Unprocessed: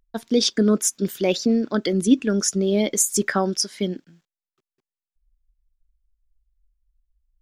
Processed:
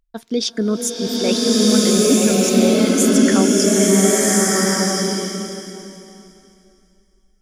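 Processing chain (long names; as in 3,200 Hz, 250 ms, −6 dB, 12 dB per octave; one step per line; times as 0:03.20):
slow-attack reverb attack 1,380 ms, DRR −8 dB
level −1.5 dB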